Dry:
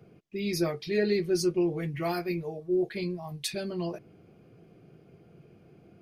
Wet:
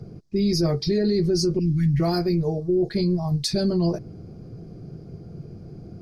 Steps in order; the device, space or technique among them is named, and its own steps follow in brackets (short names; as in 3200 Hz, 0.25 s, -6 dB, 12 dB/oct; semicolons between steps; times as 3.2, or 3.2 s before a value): RIAA curve playback; 1.59–2 elliptic band-stop 260–1600 Hz, stop band 40 dB; over-bright horn tweeter (resonant high shelf 3700 Hz +10 dB, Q 3; limiter -21.5 dBFS, peak gain reduction 10 dB); gain +7 dB